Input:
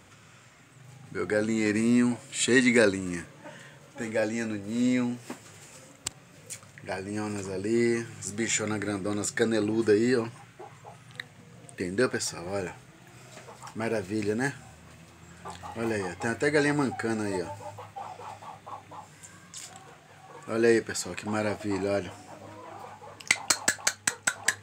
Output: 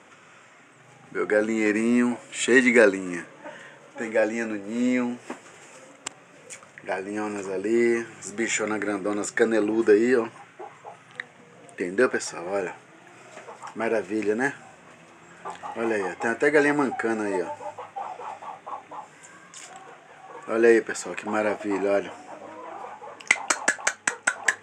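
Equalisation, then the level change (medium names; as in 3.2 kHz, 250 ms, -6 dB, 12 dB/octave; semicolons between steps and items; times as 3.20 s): high-pass 290 Hz 12 dB/octave; low-pass 6.2 kHz 12 dB/octave; peaking EQ 4.3 kHz -14 dB 0.56 oct; +6.0 dB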